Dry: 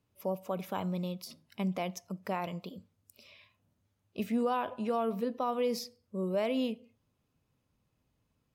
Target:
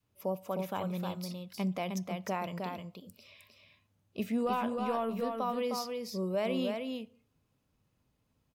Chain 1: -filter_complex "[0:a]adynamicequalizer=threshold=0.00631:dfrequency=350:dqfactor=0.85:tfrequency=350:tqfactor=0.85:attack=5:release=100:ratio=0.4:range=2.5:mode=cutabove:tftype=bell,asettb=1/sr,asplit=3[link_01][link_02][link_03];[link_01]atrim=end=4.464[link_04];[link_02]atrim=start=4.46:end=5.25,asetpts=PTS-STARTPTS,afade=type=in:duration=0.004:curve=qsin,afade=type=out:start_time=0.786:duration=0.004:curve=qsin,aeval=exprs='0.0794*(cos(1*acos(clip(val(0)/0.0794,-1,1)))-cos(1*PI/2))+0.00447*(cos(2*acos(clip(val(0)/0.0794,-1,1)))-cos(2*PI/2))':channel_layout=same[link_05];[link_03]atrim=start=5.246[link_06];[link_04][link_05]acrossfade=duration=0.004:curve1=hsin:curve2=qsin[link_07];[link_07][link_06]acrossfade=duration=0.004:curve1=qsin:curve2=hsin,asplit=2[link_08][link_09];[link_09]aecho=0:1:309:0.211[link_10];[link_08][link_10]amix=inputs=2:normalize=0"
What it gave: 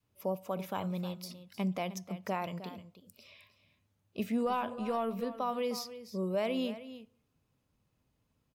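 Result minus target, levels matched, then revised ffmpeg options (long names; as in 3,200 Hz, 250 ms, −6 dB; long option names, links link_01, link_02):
echo-to-direct −9 dB
-filter_complex "[0:a]adynamicequalizer=threshold=0.00631:dfrequency=350:dqfactor=0.85:tfrequency=350:tqfactor=0.85:attack=5:release=100:ratio=0.4:range=2.5:mode=cutabove:tftype=bell,asettb=1/sr,asplit=3[link_01][link_02][link_03];[link_01]atrim=end=4.464[link_04];[link_02]atrim=start=4.46:end=5.25,asetpts=PTS-STARTPTS,afade=type=in:duration=0.004:curve=qsin,afade=type=out:start_time=0.786:duration=0.004:curve=qsin,aeval=exprs='0.0794*(cos(1*acos(clip(val(0)/0.0794,-1,1)))-cos(1*PI/2))+0.00447*(cos(2*acos(clip(val(0)/0.0794,-1,1)))-cos(2*PI/2))':channel_layout=same[link_05];[link_03]atrim=start=5.246[link_06];[link_04][link_05]acrossfade=duration=0.004:curve1=hsin:curve2=qsin[link_07];[link_07][link_06]acrossfade=duration=0.004:curve1=qsin:curve2=hsin,asplit=2[link_08][link_09];[link_09]aecho=0:1:309:0.596[link_10];[link_08][link_10]amix=inputs=2:normalize=0"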